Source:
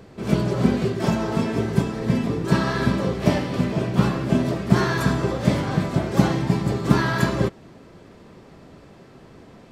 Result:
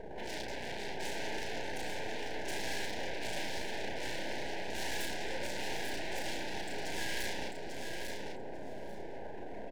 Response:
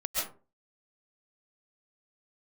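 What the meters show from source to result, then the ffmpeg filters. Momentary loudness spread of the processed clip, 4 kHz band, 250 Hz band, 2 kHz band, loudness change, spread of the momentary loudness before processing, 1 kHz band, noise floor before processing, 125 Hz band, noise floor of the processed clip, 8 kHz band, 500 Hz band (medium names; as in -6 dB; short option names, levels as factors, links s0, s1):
8 LU, -5.5 dB, -24.5 dB, -9.0 dB, -17.5 dB, 3 LU, -13.5 dB, -47 dBFS, -29.5 dB, -41 dBFS, -4.5 dB, -15.0 dB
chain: -filter_complex "[0:a]aeval=exprs='(tanh(22.4*val(0)+0.2)-tanh(0.2))/22.4':c=same,afftfilt=real='re*gte(hypot(re,im),0.00562)':imag='im*gte(hypot(re,im),0.00562)':win_size=1024:overlap=0.75,highshelf=f=8300:g=9.5,alimiter=level_in=1.58:limit=0.0631:level=0:latency=1,volume=0.631,acompressor=threshold=0.01:ratio=3,aeval=exprs='0.0251*sin(PI/2*2.51*val(0)/0.0251)':c=same,highpass=490,aeval=exprs='max(val(0),0)':c=same,asuperstop=centerf=1200:order=8:qfactor=2,asplit=2[s0][s1];[s1]adelay=34,volume=0.631[s2];[s0][s2]amix=inputs=2:normalize=0,aecho=1:1:844|1688|2532:0.531|0.0849|0.0136,volume=1.19"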